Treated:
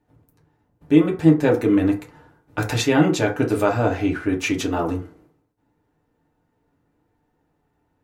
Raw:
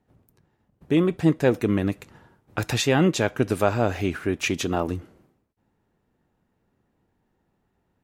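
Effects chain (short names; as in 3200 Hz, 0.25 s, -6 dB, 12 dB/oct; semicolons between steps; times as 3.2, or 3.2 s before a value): 3.88–4.29 high shelf 7900 Hz -9.5 dB; FDN reverb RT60 0.38 s, low-frequency decay 0.75×, high-frequency decay 0.4×, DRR -1 dB; gain -1 dB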